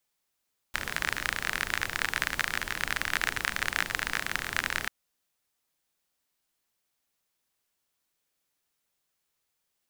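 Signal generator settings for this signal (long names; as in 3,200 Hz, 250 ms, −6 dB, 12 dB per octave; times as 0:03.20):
rain-like ticks over hiss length 4.14 s, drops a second 35, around 1,700 Hz, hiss −9 dB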